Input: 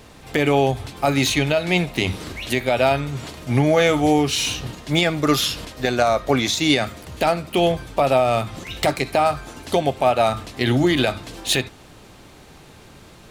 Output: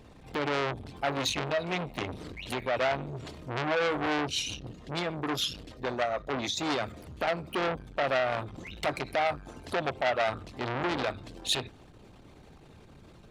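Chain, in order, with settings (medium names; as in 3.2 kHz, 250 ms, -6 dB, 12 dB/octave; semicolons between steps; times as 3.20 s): resonances exaggerated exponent 1.5; 4.27–6.57 s: rotary cabinet horn 6.7 Hz; transformer saturation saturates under 2.4 kHz; trim -6.5 dB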